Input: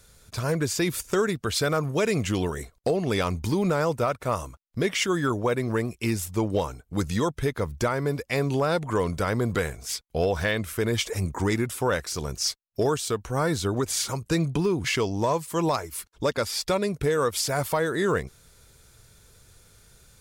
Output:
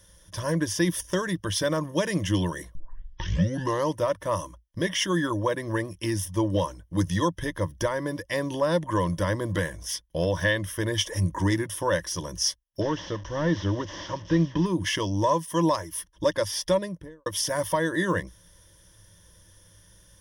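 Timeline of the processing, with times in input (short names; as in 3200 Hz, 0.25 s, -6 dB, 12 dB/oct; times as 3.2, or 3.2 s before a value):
2.75 tape start 1.22 s
12.81–14.66 delta modulation 32 kbps, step -39 dBFS
16.64–17.26 studio fade out
whole clip: ripple EQ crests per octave 1.2, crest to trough 15 dB; gain -3 dB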